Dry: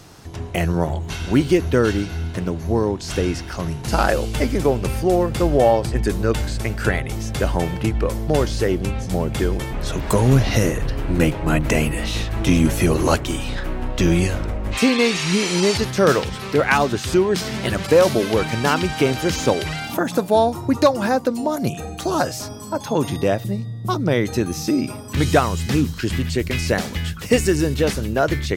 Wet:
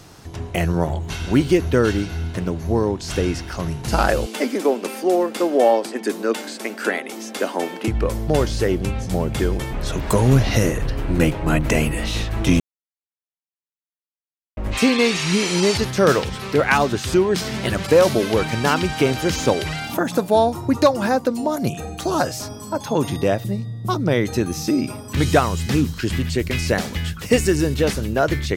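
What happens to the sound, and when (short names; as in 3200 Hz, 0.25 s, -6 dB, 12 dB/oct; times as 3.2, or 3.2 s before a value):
4.26–7.88 steep high-pass 220 Hz 48 dB/oct
12.6–14.57 mute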